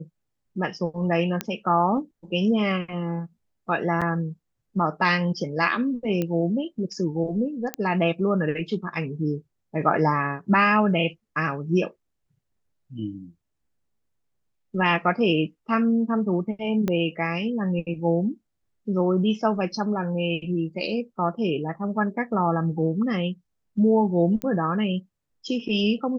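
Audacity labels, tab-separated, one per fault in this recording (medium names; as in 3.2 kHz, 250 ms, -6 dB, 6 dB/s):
1.410000	1.410000	pop -10 dBFS
4.010000	4.020000	dropout 6.3 ms
6.220000	6.220000	pop -14 dBFS
7.740000	7.740000	pop -11 dBFS
16.880000	16.880000	pop -13 dBFS
24.420000	24.420000	pop -16 dBFS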